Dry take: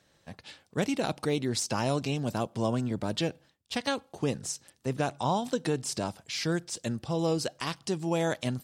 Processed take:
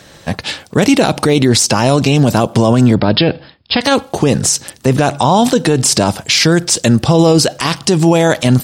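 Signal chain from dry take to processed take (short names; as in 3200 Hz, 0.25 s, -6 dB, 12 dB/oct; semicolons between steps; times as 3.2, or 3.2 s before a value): 2.95–3.81 brick-wall FIR low-pass 5300 Hz; maximiser +27 dB; gain -1 dB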